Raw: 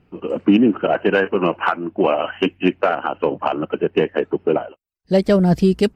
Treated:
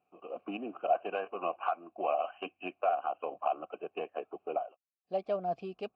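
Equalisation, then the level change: vowel filter a; LPF 6500 Hz; notches 60/120 Hz; -5.0 dB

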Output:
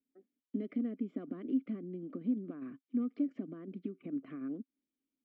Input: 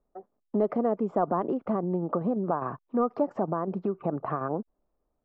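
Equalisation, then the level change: vowel filter i; bell 230 Hz +2.5 dB 0.77 oct; high shelf 2200 Hz +12 dB; 0.0 dB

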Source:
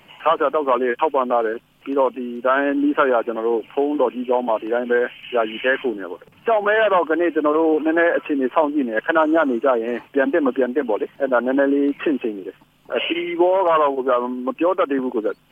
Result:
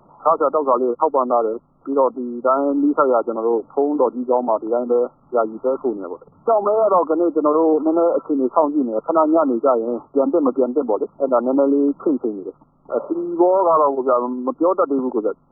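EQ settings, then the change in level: brick-wall FIR low-pass 1400 Hz; +1.5 dB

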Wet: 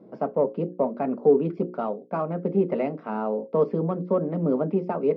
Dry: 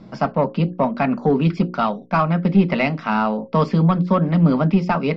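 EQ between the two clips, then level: band-pass 430 Hz, Q 2.7; +2.5 dB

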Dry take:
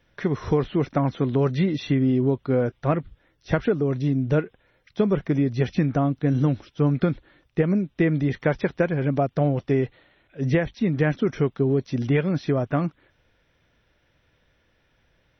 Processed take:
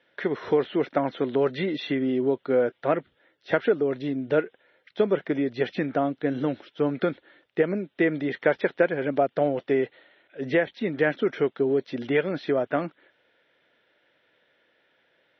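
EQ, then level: speaker cabinet 410–3800 Hz, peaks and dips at 780 Hz -3 dB, 1100 Hz -8 dB, 2500 Hz -4 dB; +4.0 dB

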